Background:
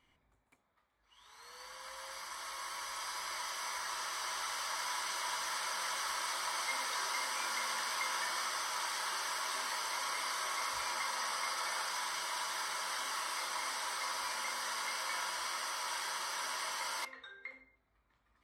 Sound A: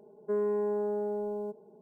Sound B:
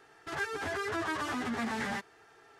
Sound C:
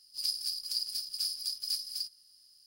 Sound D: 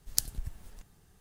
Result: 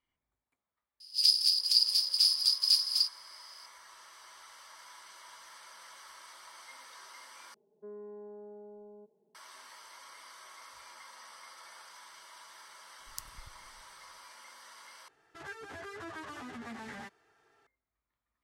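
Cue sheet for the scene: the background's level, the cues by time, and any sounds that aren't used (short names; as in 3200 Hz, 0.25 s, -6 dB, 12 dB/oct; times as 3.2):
background -14.5 dB
1 add C -1 dB + weighting filter D
7.54 replace with A -16.5 dB + LPF 1400 Hz 6 dB/oct
13 add D -15 dB
15.08 replace with B -10 dB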